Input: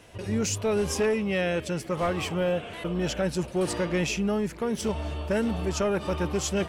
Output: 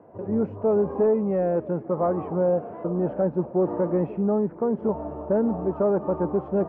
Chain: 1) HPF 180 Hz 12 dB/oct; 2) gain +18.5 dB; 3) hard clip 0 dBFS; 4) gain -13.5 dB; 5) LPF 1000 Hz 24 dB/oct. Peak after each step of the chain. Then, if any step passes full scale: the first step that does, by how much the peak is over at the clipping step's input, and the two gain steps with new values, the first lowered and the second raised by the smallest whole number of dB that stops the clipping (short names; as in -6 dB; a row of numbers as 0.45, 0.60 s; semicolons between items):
-15.0, +3.5, 0.0, -13.5, -13.0 dBFS; step 2, 3.5 dB; step 2 +14.5 dB, step 4 -9.5 dB